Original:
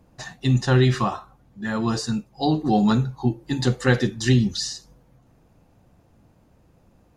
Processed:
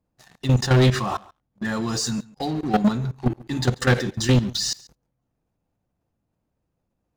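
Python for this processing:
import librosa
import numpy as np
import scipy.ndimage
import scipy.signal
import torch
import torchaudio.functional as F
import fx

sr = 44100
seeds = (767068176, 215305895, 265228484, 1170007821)

y = fx.peak_eq(x, sr, hz=6800.0, db=8.5, octaves=1.3, at=(1.72, 2.34))
y = fx.level_steps(y, sr, step_db=17)
y = fx.leveller(y, sr, passes=3)
y = y + 10.0 ** (-22.5 / 20.0) * np.pad(y, (int(139 * sr / 1000.0), 0))[:len(y)]
y = F.gain(torch.from_numpy(y), -2.5).numpy()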